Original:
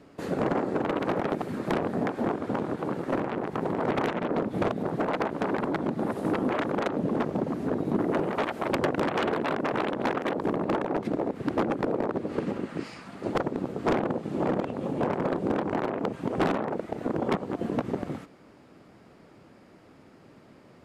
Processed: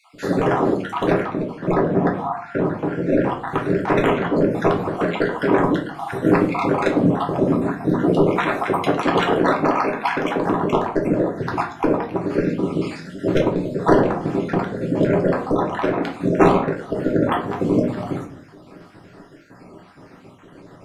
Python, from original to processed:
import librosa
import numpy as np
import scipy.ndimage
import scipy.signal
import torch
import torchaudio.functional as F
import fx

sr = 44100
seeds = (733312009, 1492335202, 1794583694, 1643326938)

y = fx.spec_dropout(x, sr, seeds[0], share_pct=53)
y = fx.lowpass(y, sr, hz=fx.line((1.21, 1300.0), (3.21, 2900.0)), slope=6, at=(1.21, 3.21), fade=0.02)
y = fx.room_shoebox(y, sr, seeds[1], volume_m3=49.0, walls='mixed', distance_m=0.63)
y = y * 10.0 ** (8.5 / 20.0)